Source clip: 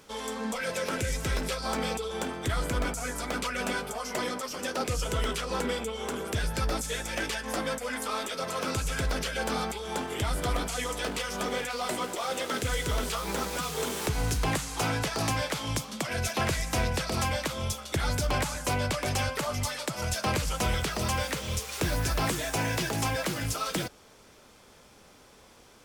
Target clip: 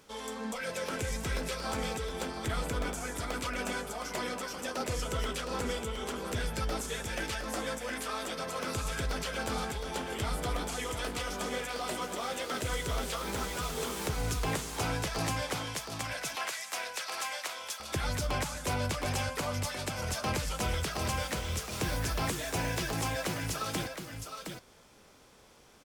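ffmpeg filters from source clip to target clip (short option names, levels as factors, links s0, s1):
-filter_complex "[0:a]asettb=1/sr,asplit=3[s0][s1][s2];[s0]atrim=end=15.644[s3];[s1]atrim=start=15.64:end=17.8,asetpts=PTS-STARTPTS,afade=t=in:d=0.004:c=qsin,afade=t=out:st=2.156:d=0.004:c=qsin,highpass=840[s4];[s2]atrim=start=17.796[s5];[s3][s4]acrossfade=d=0.004:c1=hsin:c2=qsin[s6];[s6][s5]acrossfade=d=0.004:c1=qsin:c2=hsin,aecho=1:1:714:0.473,volume=0.596"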